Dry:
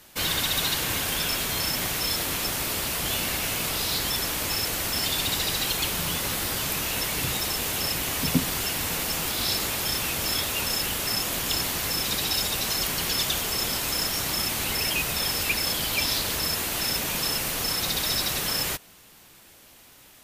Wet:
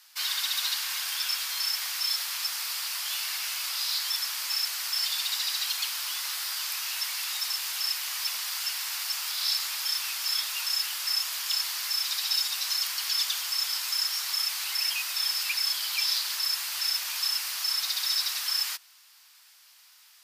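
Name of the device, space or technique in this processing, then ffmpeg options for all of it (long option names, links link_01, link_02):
headphones lying on a table: -af "highpass=frequency=1000:width=0.5412,highpass=frequency=1000:width=1.3066,equalizer=frequency=4900:width_type=o:width=0.52:gain=8.5,volume=-5.5dB"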